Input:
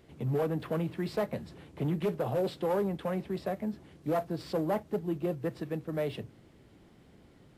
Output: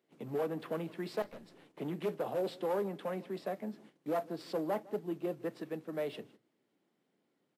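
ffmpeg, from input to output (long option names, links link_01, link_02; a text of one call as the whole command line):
ffmpeg -i in.wav -filter_complex "[0:a]agate=range=-14dB:threshold=-51dB:ratio=16:detection=peak,acrossover=split=180[link_01][link_02];[link_01]acrusher=bits=3:mix=0:aa=0.000001[link_03];[link_03][link_02]amix=inputs=2:normalize=0,asettb=1/sr,asplit=3[link_04][link_05][link_06];[link_04]atrim=end=1.224[link_07];[link_05]atrim=start=1.22:end=1.7,asetpts=PTS-STARTPTS,afade=type=in:duration=0.004:curve=qsin,afade=type=out:start_time=0.476:duration=0.004:curve=qsin,aeval=exprs='(tanh(126*val(0)+0.6)-tanh(0.6))/126':channel_layout=same[link_08];[link_06]atrim=start=1.696[link_09];[link_07][link_08]acrossfade=duration=0.004:curve1=hsin:curve2=qsin[link_10];[link_10][link_09]acrossfade=duration=0.004:curve1=qsin:curve2=hsin,asplit=2[link_11][link_12];[link_12]adelay=157.4,volume=-22dB,highshelf=frequency=4000:gain=-3.54[link_13];[link_11][link_13]amix=inputs=2:normalize=0,volume=-3.5dB" out.wav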